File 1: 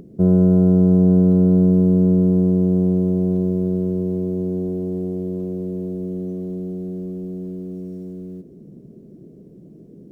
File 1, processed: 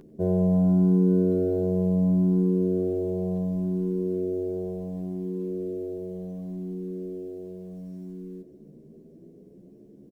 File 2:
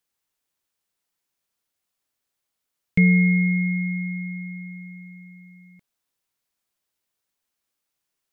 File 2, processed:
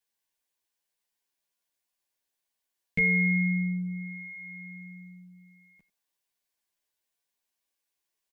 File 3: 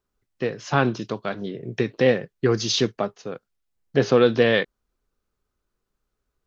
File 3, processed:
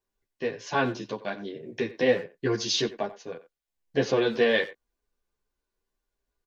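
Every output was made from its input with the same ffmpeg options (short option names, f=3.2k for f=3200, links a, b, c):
-filter_complex "[0:a]asuperstop=centerf=1300:order=8:qfactor=6.9,equalizer=f=110:w=0.52:g=-7.5,asplit=2[a][b];[b]adelay=90,highpass=300,lowpass=3.4k,asoftclip=type=hard:threshold=-16dB,volume=-15dB[c];[a][c]amix=inputs=2:normalize=0,asplit=2[d][e];[e]adelay=10.8,afreqshift=0.69[f];[d][f]amix=inputs=2:normalize=1"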